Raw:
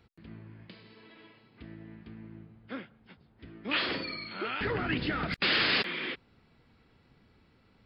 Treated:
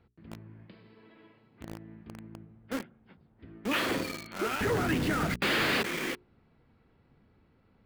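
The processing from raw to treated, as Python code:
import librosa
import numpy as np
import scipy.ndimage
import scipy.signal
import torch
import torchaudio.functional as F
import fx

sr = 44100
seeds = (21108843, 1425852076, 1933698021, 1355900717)

p1 = fx.lowpass(x, sr, hz=1200.0, slope=6)
p2 = fx.hum_notches(p1, sr, base_hz=60, count=7)
p3 = fx.quant_companded(p2, sr, bits=2)
y = p2 + (p3 * 10.0 ** (-7.5 / 20.0))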